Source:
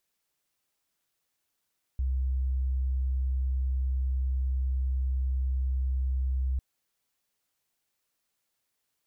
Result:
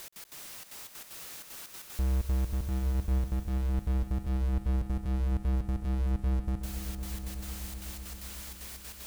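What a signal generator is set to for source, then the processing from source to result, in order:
tone sine 65 Hz -25 dBFS 4.60 s
power-law waveshaper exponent 0.35; trance gate "x.x.xxxx.x" 190 bpm -60 dB; on a send: echo with a slow build-up 125 ms, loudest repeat 5, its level -13 dB

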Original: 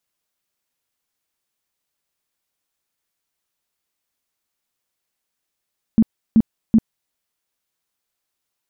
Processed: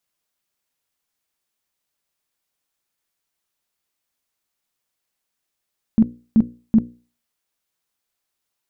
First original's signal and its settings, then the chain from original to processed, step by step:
tone bursts 223 Hz, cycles 10, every 0.38 s, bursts 3, -8 dBFS
hum notches 60/120/180/240/300/360/420/480/540 Hz

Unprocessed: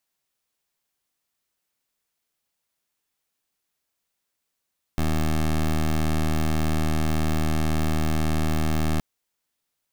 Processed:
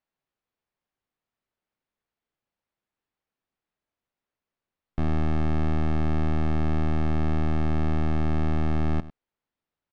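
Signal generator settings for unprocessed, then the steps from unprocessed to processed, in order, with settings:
pulse 78.2 Hz, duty 16% -22 dBFS 4.02 s
tape spacing loss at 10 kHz 32 dB; delay 100 ms -16.5 dB

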